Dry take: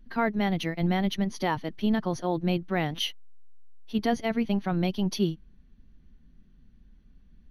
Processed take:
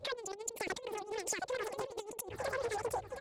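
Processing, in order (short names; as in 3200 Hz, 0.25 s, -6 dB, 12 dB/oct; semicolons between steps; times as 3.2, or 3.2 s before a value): in parallel at -7 dB: overloaded stage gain 29 dB; on the sum: HPF 44 Hz 12 dB/oct; air absorption 52 m; limiter -24 dBFS, peak gain reduction 12 dB; speed mistake 33 rpm record played at 78 rpm; feedback echo 0.718 s, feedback 37%, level -6.5 dB; envelope flanger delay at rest 9 ms, full sweep at -28 dBFS; high shelf 10000 Hz -10.5 dB; negative-ratio compressor -39 dBFS, ratio -0.5; Doppler distortion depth 0.62 ms; gain +1 dB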